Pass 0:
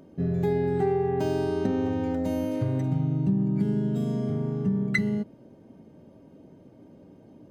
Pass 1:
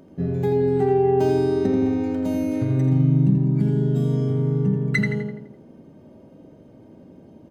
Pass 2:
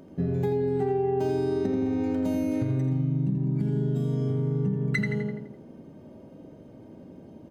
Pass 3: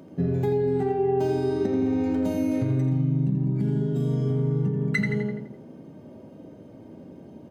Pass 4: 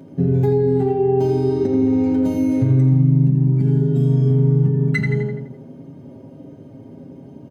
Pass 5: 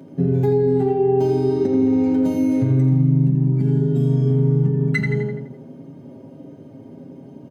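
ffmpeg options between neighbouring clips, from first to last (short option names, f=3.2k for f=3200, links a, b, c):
-filter_complex "[0:a]bandreject=f=148.2:t=h:w=4,bandreject=f=296.4:t=h:w=4,bandreject=f=444.6:t=h:w=4,bandreject=f=592.8:t=h:w=4,bandreject=f=741:t=h:w=4,bandreject=f=889.2:t=h:w=4,bandreject=f=1.0374k:t=h:w=4,bandreject=f=1.1856k:t=h:w=4,bandreject=f=1.3338k:t=h:w=4,bandreject=f=1.482k:t=h:w=4,bandreject=f=1.6302k:t=h:w=4,bandreject=f=1.7784k:t=h:w=4,bandreject=f=1.9266k:t=h:w=4,bandreject=f=2.0748k:t=h:w=4,bandreject=f=2.223k:t=h:w=4,bandreject=f=2.3712k:t=h:w=4,bandreject=f=2.5194k:t=h:w=4,bandreject=f=2.6676k:t=h:w=4,bandreject=f=2.8158k:t=h:w=4,bandreject=f=2.964k:t=h:w=4,bandreject=f=3.1122k:t=h:w=4,bandreject=f=3.2604k:t=h:w=4,bandreject=f=3.4086k:t=h:w=4,bandreject=f=3.5568k:t=h:w=4,bandreject=f=3.705k:t=h:w=4,bandreject=f=3.8532k:t=h:w=4,bandreject=f=4.0014k:t=h:w=4,bandreject=f=4.1496k:t=h:w=4,bandreject=f=4.2978k:t=h:w=4,bandreject=f=4.446k:t=h:w=4,bandreject=f=4.5942k:t=h:w=4,bandreject=f=4.7424k:t=h:w=4,bandreject=f=4.8906k:t=h:w=4,bandreject=f=5.0388k:t=h:w=4,bandreject=f=5.187k:t=h:w=4,bandreject=f=5.3352k:t=h:w=4,bandreject=f=5.4834k:t=h:w=4,asplit=2[a][b];[b]adelay=84,lowpass=f=3.5k:p=1,volume=-3.5dB,asplit=2[c][d];[d]adelay=84,lowpass=f=3.5k:p=1,volume=0.5,asplit=2[e][f];[f]adelay=84,lowpass=f=3.5k:p=1,volume=0.5,asplit=2[g][h];[h]adelay=84,lowpass=f=3.5k:p=1,volume=0.5,asplit=2[i][j];[j]adelay=84,lowpass=f=3.5k:p=1,volume=0.5,asplit=2[k][l];[l]adelay=84,lowpass=f=3.5k:p=1,volume=0.5,asplit=2[m][n];[n]adelay=84,lowpass=f=3.5k:p=1,volume=0.5[o];[c][e][g][i][k][m][o]amix=inputs=7:normalize=0[p];[a][p]amix=inputs=2:normalize=0,volume=2.5dB"
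-af "acompressor=threshold=-23dB:ratio=6"
-af "flanger=delay=6.1:depth=8.4:regen=-67:speed=0.34:shape=triangular,highpass=73,volume=6.5dB"
-af "lowshelf=f=290:g=7.5,aecho=1:1:7.4:0.57"
-af "highpass=120"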